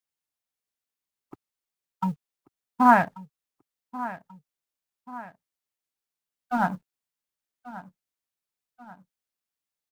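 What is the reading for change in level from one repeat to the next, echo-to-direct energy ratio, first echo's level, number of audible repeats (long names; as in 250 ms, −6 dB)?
−6.5 dB, −15.0 dB, −16.0 dB, 2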